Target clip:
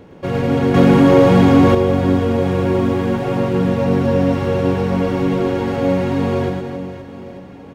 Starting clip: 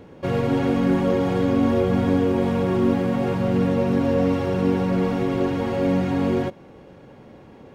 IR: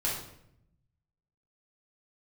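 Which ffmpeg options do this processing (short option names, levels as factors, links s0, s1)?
-filter_complex "[0:a]aecho=1:1:110|275|522.5|893.8|1451:0.631|0.398|0.251|0.158|0.1,asettb=1/sr,asplit=3[s0][s1][s2];[s0]atrim=end=0.744[s3];[s1]atrim=start=0.74:end=1.75,asetpts=PTS-STARTPTS,afade=t=in:d=0.004:c=qsin,afade=t=out:st=1.006:d=0.004:c=qsin,acontrast=82[s4];[s2]atrim=start=1.746[s5];[s3][s4]acrossfade=d=0.004:c1=hsin:c2=qsin[s6];[s6][s5]acrossfade=d=0.004:c1=qsin:c2=hsin,volume=1.33"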